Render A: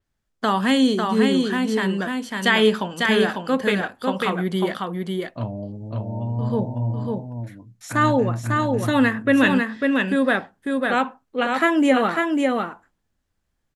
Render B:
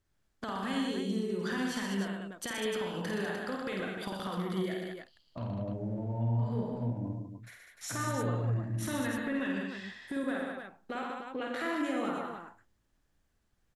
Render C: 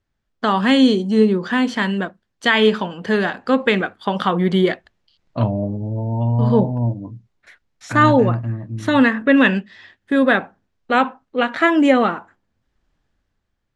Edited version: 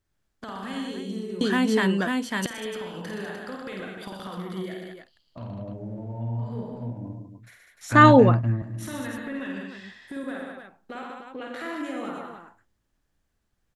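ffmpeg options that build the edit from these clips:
ffmpeg -i take0.wav -i take1.wav -i take2.wav -filter_complex "[1:a]asplit=3[link_01][link_02][link_03];[link_01]atrim=end=1.412[link_04];[0:a]atrim=start=1.408:end=2.462[link_05];[link_02]atrim=start=2.458:end=7.922[link_06];[2:a]atrim=start=7.918:end=8.622[link_07];[link_03]atrim=start=8.618[link_08];[link_04][link_05]acrossfade=duration=0.004:curve1=hsin:curve2=hsin[link_09];[link_09][link_06]acrossfade=duration=0.004:curve1=hsin:curve2=hsin[link_10];[link_10][link_07]acrossfade=duration=0.004:curve1=hsin:curve2=hsin[link_11];[link_11][link_08]acrossfade=duration=0.004:curve1=hsin:curve2=hsin" out.wav

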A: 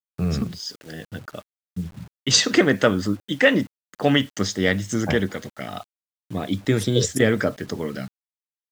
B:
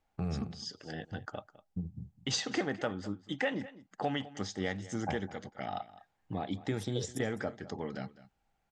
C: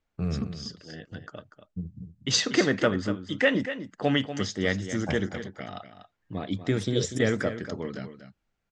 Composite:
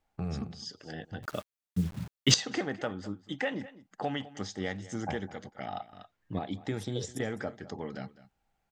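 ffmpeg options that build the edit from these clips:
ffmpeg -i take0.wav -i take1.wav -i take2.wav -filter_complex "[1:a]asplit=3[link_01][link_02][link_03];[link_01]atrim=end=1.232[link_04];[0:a]atrim=start=1.228:end=2.342[link_05];[link_02]atrim=start=2.338:end=5.932[link_06];[2:a]atrim=start=5.928:end=6.392[link_07];[link_03]atrim=start=6.388[link_08];[link_04][link_05]acrossfade=duration=0.004:curve1=hsin:curve2=hsin[link_09];[link_09][link_06]acrossfade=duration=0.004:curve1=hsin:curve2=hsin[link_10];[link_10][link_07]acrossfade=duration=0.004:curve1=hsin:curve2=hsin[link_11];[link_11][link_08]acrossfade=duration=0.004:curve1=hsin:curve2=hsin" out.wav

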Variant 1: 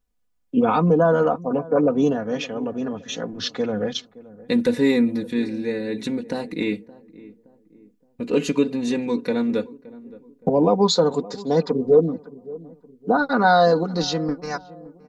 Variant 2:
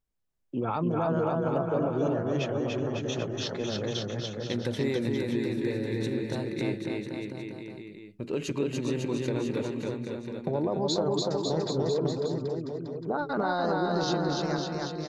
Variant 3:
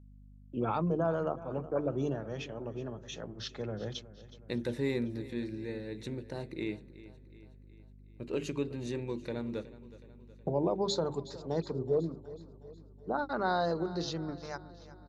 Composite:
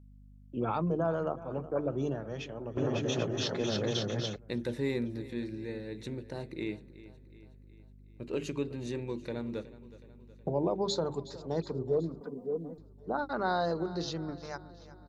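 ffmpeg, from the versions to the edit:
ffmpeg -i take0.wav -i take1.wav -i take2.wav -filter_complex "[2:a]asplit=3[link_01][link_02][link_03];[link_01]atrim=end=2.772[link_04];[1:a]atrim=start=2.768:end=4.362[link_05];[link_02]atrim=start=4.358:end=12.212[link_06];[0:a]atrim=start=12.208:end=12.782[link_07];[link_03]atrim=start=12.778[link_08];[link_04][link_05]acrossfade=duration=0.004:curve1=hsin:curve2=hsin[link_09];[link_09][link_06]acrossfade=duration=0.004:curve1=hsin:curve2=hsin[link_10];[link_10][link_07]acrossfade=duration=0.004:curve1=hsin:curve2=hsin[link_11];[link_11][link_08]acrossfade=duration=0.004:curve1=hsin:curve2=hsin" out.wav

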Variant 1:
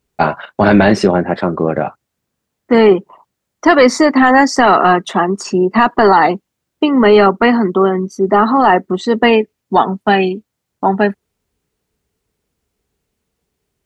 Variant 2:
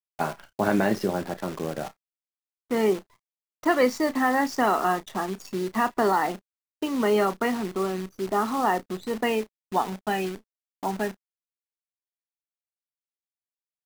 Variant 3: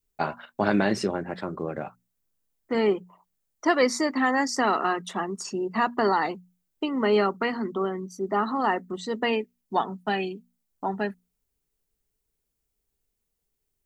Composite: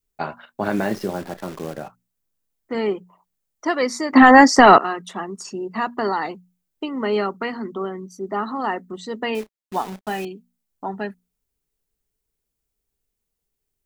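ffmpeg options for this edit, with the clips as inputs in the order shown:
ffmpeg -i take0.wav -i take1.wav -i take2.wav -filter_complex "[1:a]asplit=2[link_01][link_02];[2:a]asplit=4[link_03][link_04][link_05][link_06];[link_03]atrim=end=0.81[link_07];[link_01]atrim=start=0.57:end=1.93[link_08];[link_04]atrim=start=1.69:end=4.132[link_09];[0:a]atrim=start=4.128:end=4.782[link_10];[link_05]atrim=start=4.778:end=9.352[link_11];[link_02]atrim=start=9.348:end=10.252[link_12];[link_06]atrim=start=10.248[link_13];[link_07][link_08]acrossfade=duration=0.24:curve1=tri:curve2=tri[link_14];[link_14][link_09]acrossfade=duration=0.24:curve1=tri:curve2=tri[link_15];[link_15][link_10]acrossfade=duration=0.004:curve1=hsin:curve2=hsin[link_16];[link_16][link_11]acrossfade=duration=0.004:curve1=hsin:curve2=hsin[link_17];[link_17][link_12]acrossfade=duration=0.004:curve1=hsin:curve2=hsin[link_18];[link_18][link_13]acrossfade=duration=0.004:curve1=hsin:curve2=hsin" out.wav

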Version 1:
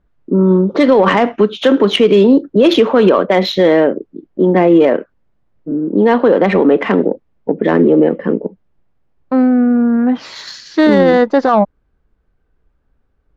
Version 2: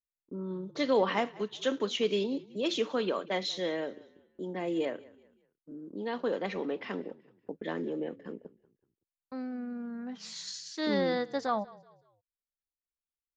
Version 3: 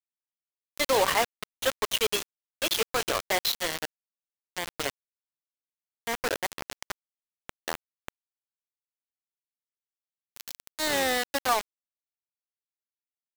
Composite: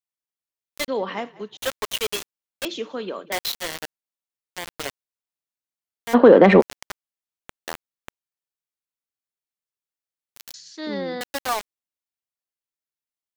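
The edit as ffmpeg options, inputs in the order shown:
ffmpeg -i take0.wav -i take1.wav -i take2.wav -filter_complex "[1:a]asplit=3[link_01][link_02][link_03];[2:a]asplit=5[link_04][link_05][link_06][link_07][link_08];[link_04]atrim=end=0.882[link_09];[link_01]atrim=start=0.878:end=1.572[link_10];[link_05]atrim=start=1.568:end=2.652[link_11];[link_02]atrim=start=2.648:end=3.322[link_12];[link_06]atrim=start=3.318:end=6.15[link_13];[0:a]atrim=start=6.13:end=6.62[link_14];[link_07]atrim=start=6.6:end=10.542[link_15];[link_03]atrim=start=10.538:end=11.212[link_16];[link_08]atrim=start=11.208[link_17];[link_09][link_10]acrossfade=duration=0.004:curve1=hsin:curve2=hsin[link_18];[link_18][link_11]acrossfade=duration=0.004:curve1=hsin:curve2=hsin[link_19];[link_19][link_12]acrossfade=duration=0.004:curve1=hsin:curve2=hsin[link_20];[link_20][link_13]acrossfade=duration=0.004:curve1=hsin:curve2=hsin[link_21];[link_21][link_14]acrossfade=duration=0.02:curve1=tri:curve2=tri[link_22];[link_22][link_15]acrossfade=duration=0.02:curve1=tri:curve2=tri[link_23];[link_23][link_16]acrossfade=duration=0.004:curve1=hsin:curve2=hsin[link_24];[link_24][link_17]acrossfade=duration=0.004:curve1=hsin:curve2=hsin" out.wav

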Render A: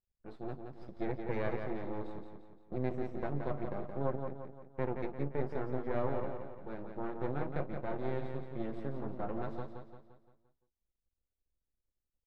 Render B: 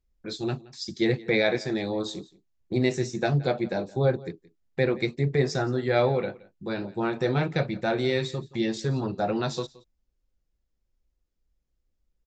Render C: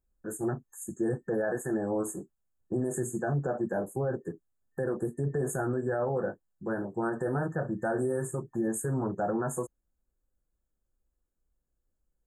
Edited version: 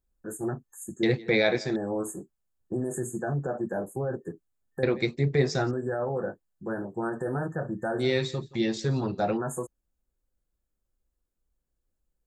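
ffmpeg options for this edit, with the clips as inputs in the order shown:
ffmpeg -i take0.wav -i take1.wav -i take2.wav -filter_complex "[1:a]asplit=3[link_01][link_02][link_03];[2:a]asplit=4[link_04][link_05][link_06][link_07];[link_04]atrim=end=1.032[link_08];[link_01]atrim=start=1.028:end=1.762[link_09];[link_05]atrim=start=1.758:end=4.832[link_10];[link_02]atrim=start=4.828:end=5.712[link_11];[link_06]atrim=start=5.708:end=8.03[link_12];[link_03]atrim=start=7.99:end=9.38[link_13];[link_07]atrim=start=9.34[link_14];[link_08][link_09]acrossfade=duration=0.004:curve1=hsin:curve2=hsin[link_15];[link_15][link_10]acrossfade=duration=0.004:curve1=hsin:curve2=hsin[link_16];[link_16][link_11]acrossfade=duration=0.004:curve1=hsin:curve2=hsin[link_17];[link_17][link_12]acrossfade=duration=0.004:curve1=hsin:curve2=hsin[link_18];[link_18][link_13]acrossfade=duration=0.04:curve1=tri:curve2=tri[link_19];[link_19][link_14]acrossfade=duration=0.04:curve1=tri:curve2=tri" out.wav

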